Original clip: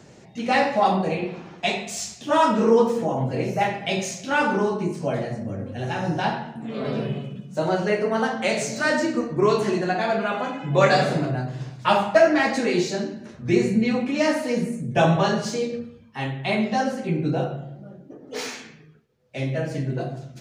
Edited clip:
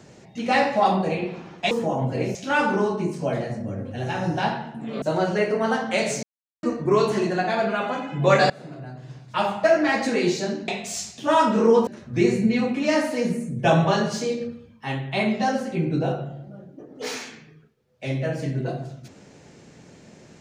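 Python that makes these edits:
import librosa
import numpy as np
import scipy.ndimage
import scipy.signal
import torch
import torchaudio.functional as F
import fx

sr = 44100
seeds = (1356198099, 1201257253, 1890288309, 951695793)

y = fx.edit(x, sr, fx.move(start_s=1.71, length_s=1.19, to_s=13.19),
    fx.cut(start_s=3.54, length_s=0.62),
    fx.cut(start_s=6.83, length_s=0.7),
    fx.silence(start_s=8.74, length_s=0.4),
    fx.fade_in_from(start_s=11.01, length_s=1.61, floor_db=-23.5), tone=tone)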